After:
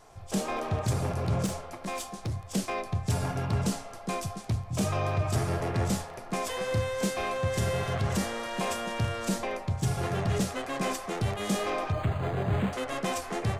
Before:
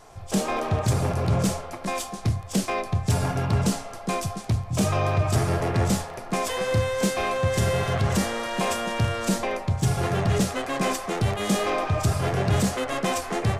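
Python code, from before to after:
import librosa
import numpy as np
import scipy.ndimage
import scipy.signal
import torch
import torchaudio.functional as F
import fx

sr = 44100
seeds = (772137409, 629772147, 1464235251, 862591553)

y = fx.clip_hard(x, sr, threshold_db=-22.5, at=(1.46, 2.34))
y = fx.resample_linear(y, sr, factor=8, at=(11.92, 12.73))
y = F.gain(torch.from_numpy(y), -5.5).numpy()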